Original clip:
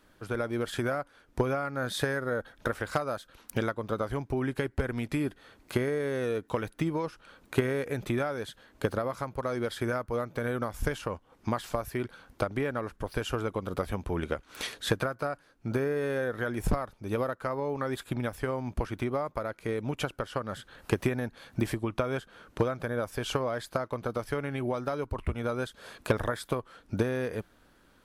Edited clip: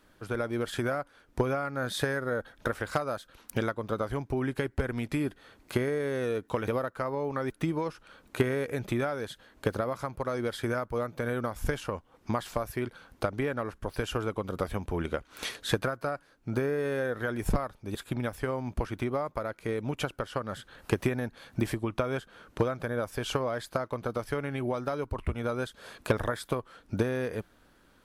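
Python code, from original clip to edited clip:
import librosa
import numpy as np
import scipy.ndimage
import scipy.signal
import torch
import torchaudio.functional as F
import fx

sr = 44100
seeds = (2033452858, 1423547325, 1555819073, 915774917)

y = fx.edit(x, sr, fx.move(start_s=17.13, length_s=0.82, to_s=6.68), tone=tone)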